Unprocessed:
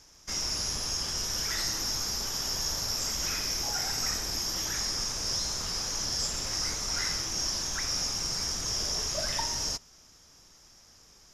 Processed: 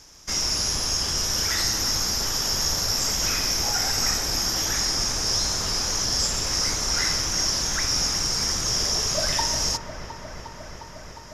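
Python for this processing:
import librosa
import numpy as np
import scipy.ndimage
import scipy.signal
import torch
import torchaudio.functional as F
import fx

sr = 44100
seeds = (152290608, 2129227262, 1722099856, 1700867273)

y = fx.echo_wet_lowpass(x, sr, ms=356, feedback_pct=82, hz=2000.0, wet_db=-9.5)
y = F.gain(torch.from_numpy(y), 7.0).numpy()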